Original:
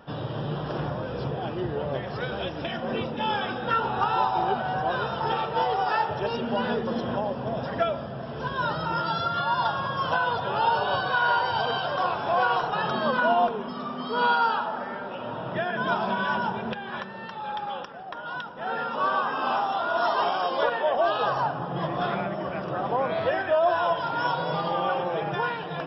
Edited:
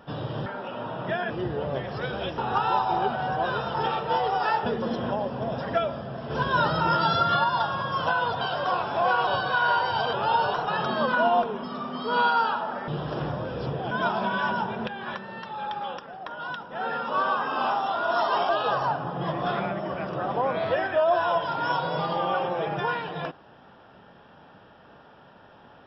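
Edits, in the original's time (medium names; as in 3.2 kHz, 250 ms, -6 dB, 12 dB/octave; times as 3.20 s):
0.46–1.49 s: swap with 14.93–15.77 s
2.57–3.84 s: delete
6.12–6.71 s: delete
8.35–9.49 s: gain +4.5 dB
10.46–10.87 s: swap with 11.73–12.59 s
20.35–21.04 s: delete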